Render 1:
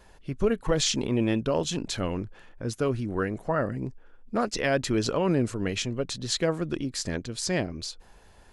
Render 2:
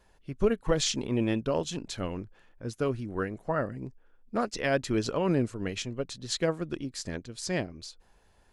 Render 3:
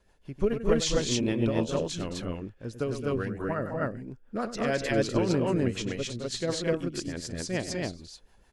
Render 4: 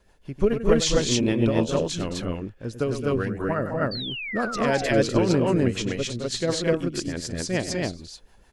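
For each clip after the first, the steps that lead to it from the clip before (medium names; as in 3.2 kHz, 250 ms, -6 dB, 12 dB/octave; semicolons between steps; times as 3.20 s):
upward expansion 1.5:1, over -37 dBFS
loudspeakers at several distances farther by 33 m -11 dB, 74 m -7 dB, 86 m 0 dB; rotary cabinet horn 6.7 Hz
painted sound fall, 3.91–5.08 s, 430–4700 Hz -38 dBFS; trim +5 dB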